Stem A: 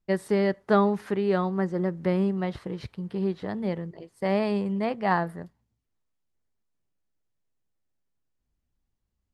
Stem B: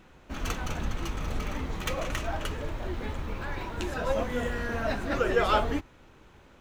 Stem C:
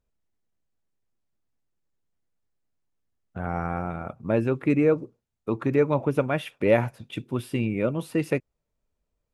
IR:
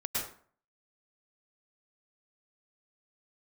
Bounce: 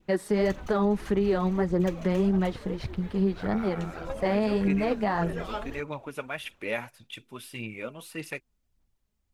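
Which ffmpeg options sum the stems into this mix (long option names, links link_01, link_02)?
-filter_complex "[0:a]volume=1.5dB[link_01];[1:a]volume=-11.5dB[link_02];[2:a]tiltshelf=frequency=910:gain=-8.5,volume=-9dB[link_03];[link_01][link_02][link_03]amix=inputs=3:normalize=0,adynamicequalizer=threshold=0.0112:dfrequency=1300:dqfactor=0.83:tfrequency=1300:tqfactor=0.83:attack=5:release=100:ratio=0.375:range=1.5:mode=cutabove:tftype=bell,aphaser=in_gain=1:out_gain=1:delay=4.9:decay=0.43:speed=1.7:type=sinusoidal,alimiter=limit=-16.5dB:level=0:latency=1:release=78"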